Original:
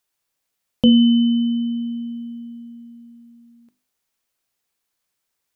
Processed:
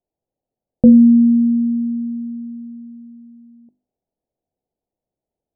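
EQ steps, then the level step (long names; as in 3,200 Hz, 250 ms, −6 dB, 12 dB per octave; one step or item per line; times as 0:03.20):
Butterworth low-pass 770 Hz 48 dB per octave
+5.0 dB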